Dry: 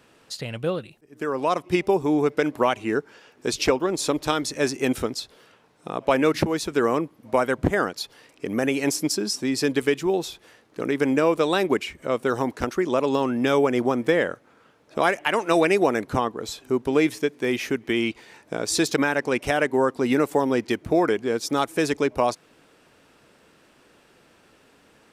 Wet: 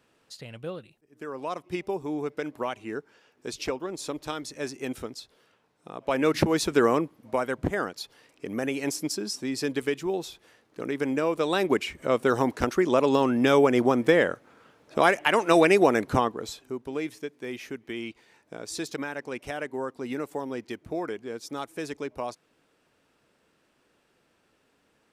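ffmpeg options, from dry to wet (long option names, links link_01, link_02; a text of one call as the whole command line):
ffmpeg -i in.wav -af "volume=8.5dB,afade=type=in:start_time=6.01:duration=0.62:silence=0.251189,afade=type=out:start_time=6.63:duration=0.74:silence=0.398107,afade=type=in:start_time=11.32:duration=0.7:silence=0.473151,afade=type=out:start_time=16.16:duration=0.59:silence=0.251189" out.wav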